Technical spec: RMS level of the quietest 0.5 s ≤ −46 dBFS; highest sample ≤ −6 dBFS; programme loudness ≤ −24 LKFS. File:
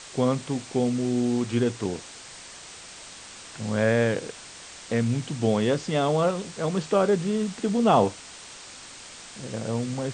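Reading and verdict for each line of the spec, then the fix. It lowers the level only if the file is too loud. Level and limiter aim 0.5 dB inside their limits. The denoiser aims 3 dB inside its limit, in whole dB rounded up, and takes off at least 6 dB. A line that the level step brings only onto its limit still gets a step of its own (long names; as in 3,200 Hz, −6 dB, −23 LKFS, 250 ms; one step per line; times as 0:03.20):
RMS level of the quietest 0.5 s −44 dBFS: out of spec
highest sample −7.0 dBFS: in spec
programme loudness −25.5 LKFS: in spec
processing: broadband denoise 6 dB, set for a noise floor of −44 dBFS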